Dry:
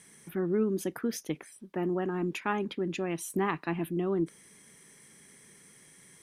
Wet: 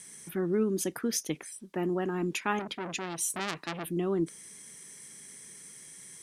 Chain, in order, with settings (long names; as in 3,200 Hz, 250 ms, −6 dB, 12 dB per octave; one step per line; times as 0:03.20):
parametric band 7,400 Hz +10 dB 1.9 octaves
0:02.59–0:03.89: saturating transformer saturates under 3,600 Hz